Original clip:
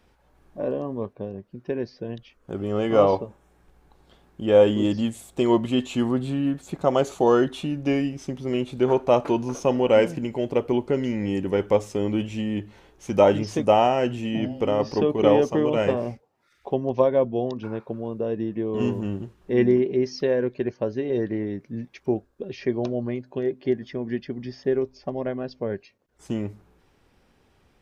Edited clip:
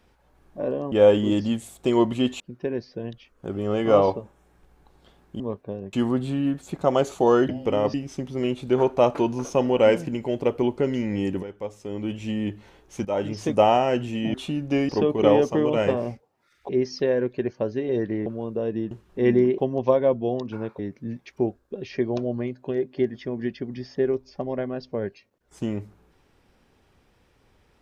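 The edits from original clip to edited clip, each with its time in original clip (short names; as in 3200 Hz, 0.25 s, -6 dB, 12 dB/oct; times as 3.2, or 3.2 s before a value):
0.92–1.45 swap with 4.45–5.93
7.49–8.04 swap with 14.44–14.89
11.53–12.42 fade in quadratic, from -14.5 dB
13.15–13.6 fade in, from -16 dB
16.69–17.9 swap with 19.9–21.47
18.55–19.23 cut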